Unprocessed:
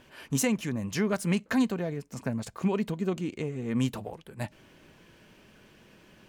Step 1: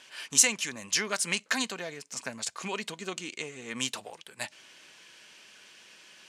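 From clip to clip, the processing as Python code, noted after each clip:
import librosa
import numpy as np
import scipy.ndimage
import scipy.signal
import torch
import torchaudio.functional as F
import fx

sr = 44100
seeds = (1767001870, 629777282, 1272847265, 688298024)

y = fx.weighting(x, sr, curve='ITU-R 468')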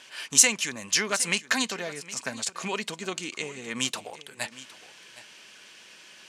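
y = x + 10.0 ** (-17.5 / 20.0) * np.pad(x, (int(763 * sr / 1000.0), 0))[:len(x)]
y = F.gain(torch.from_numpy(y), 3.5).numpy()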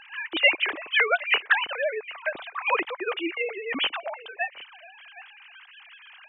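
y = fx.sine_speech(x, sr)
y = F.gain(torch.from_numpy(y), 2.0).numpy()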